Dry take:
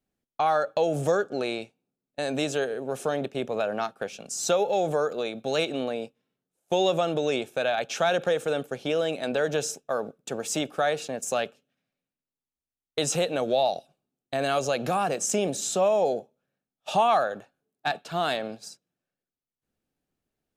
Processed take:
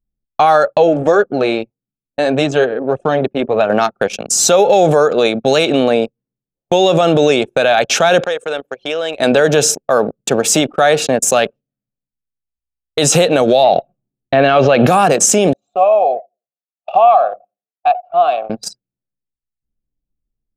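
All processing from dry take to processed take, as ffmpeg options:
ffmpeg -i in.wav -filter_complex "[0:a]asettb=1/sr,asplit=3[link_01][link_02][link_03];[link_01]atrim=end=0.734[link_04];[link_02]atrim=start=0.73:end=3.7,asetpts=PTS-STARTPTS,afade=type=in:duration=0.004:curve=qsin,afade=type=out:start_time=2.966:duration=0.004:curve=qsin,aemphasis=mode=reproduction:type=50kf,flanger=delay=0.9:depth=2.9:regen=-49:speed=1.7:shape=sinusoidal[link_05];[link_03]atrim=start=3.696[link_06];[link_04][link_05]acrossfade=duration=0.004:curve1=hsin:curve2=qsin[link_07];[link_07][link_06]acrossfade=duration=0.004:curve1=qsin:curve2=hsin,asettb=1/sr,asplit=3[link_08][link_09][link_10];[link_08]atrim=end=8.254[link_11];[link_09]atrim=start=8.25:end=9.2,asetpts=PTS-STARTPTS,afade=type=in:duration=0.004:curve=qsin,afade=type=out:start_time=0.946:duration=0.004:curve=qsin,highshelf=frequency=12000:gain=2,acompressor=threshold=-41dB:ratio=1.5:attack=3.2:release=140:knee=1:detection=peak,highpass=frequency=820:poles=1[link_12];[link_10]atrim=start=9.196[link_13];[link_11][link_12]acrossfade=duration=0.004:curve1=hsin:curve2=qsin[link_14];[link_14][link_13]acrossfade=duration=0.004:curve1=qsin:curve2=hsin,asettb=1/sr,asplit=3[link_15][link_16][link_17];[link_15]atrim=end=13.644[link_18];[link_16]atrim=start=13.64:end=14.87,asetpts=PTS-STARTPTS,afade=type=in:duration=0.004:curve=qsin,afade=type=out:start_time=1.226:duration=0.004:curve=qsin,lowpass=frequency=3300:width=0.5412,lowpass=frequency=3300:width=1.3066,acontrast=83[link_19];[link_17]atrim=start=14.866[link_20];[link_18][link_19]acrossfade=duration=0.004:curve1=hsin:curve2=qsin[link_21];[link_21][link_20]acrossfade=duration=0.004:curve1=qsin:curve2=hsin,asettb=1/sr,asplit=3[link_22][link_23][link_24];[link_22]atrim=end=15.534[link_25];[link_23]atrim=start=15.53:end=18.5,asetpts=PTS-STARTPTS,afade=type=in:duration=0.004:curve=qsin,afade=type=out:start_time=2.966:duration=0.004:curve=qsin,asplit=3[link_26][link_27][link_28];[link_26]bandpass=frequency=730:width_type=q:width=8,volume=0dB[link_29];[link_27]bandpass=frequency=1090:width_type=q:width=8,volume=-6dB[link_30];[link_28]bandpass=frequency=2440:width_type=q:width=8,volume=-9dB[link_31];[link_29][link_30][link_31]amix=inputs=3:normalize=0,aecho=1:1:84|168|252:0.141|0.041|0.0119,atrim=end_sample=130977[link_32];[link_24]atrim=start=18.496[link_33];[link_25][link_32]acrossfade=duration=0.004:curve1=hsin:curve2=qsin[link_34];[link_34][link_33]acrossfade=duration=0.004:curve1=qsin:curve2=hsin,anlmdn=0.251,alimiter=level_in=19.5dB:limit=-1dB:release=50:level=0:latency=1,volume=-1dB" out.wav

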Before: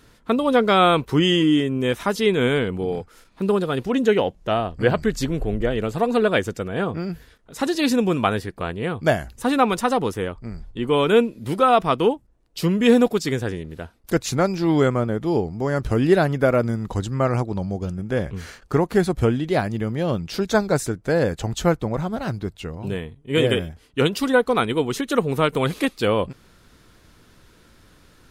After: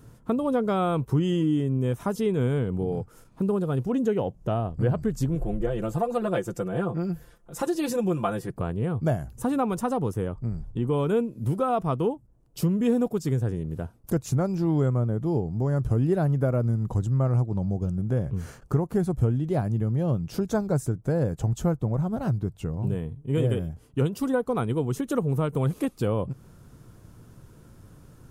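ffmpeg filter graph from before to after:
ffmpeg -i in.wav -filter_complex "[0:a]asettb=1/sr,asplit=3[link_01][link_02][link_03];[link_01]atrim=end=5.354[link_04];[link_02]atrim=start=5.35:end=8.5,asetpts=PTS-STARTPTS,afade=type=in:duration=0.004:curve=qsin,afade=type=out:start_time=3.146:duration=0.004:curve=qsin,equalizer=frequency=120:width=0.54:gain=-8,aecho=1:1:5.8:0.81,atrim=end_sample=138915[link_05];[link_03]atrim=start=8.496[link_06];[link_04][link_05]acrossfade=duration=0.004:curve1=hsin:curve2=qsin[link_07];[link_07][link_06]acrossfade=duration=0.004:curve1=qsin:curve2=hsin,equalizer=frequency=125:width_type=o:width=1:gain=11,equalizer=frequency=2000:width_type=o:width=1:gain=-9,equalizer=frequency=4000:width_type=o:width=1:gain=-11,acompressor=threshold=-27dB:ratio=2" out.wav

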